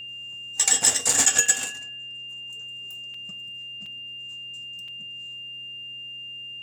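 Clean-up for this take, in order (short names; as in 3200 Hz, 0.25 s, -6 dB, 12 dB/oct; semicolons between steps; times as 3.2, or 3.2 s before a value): de-hum 128.2 Hz, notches 5; notch 2800 Hz, Q 30; interpolate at 1.13/1.46/3.14/3.86/4.88, 3.7 ms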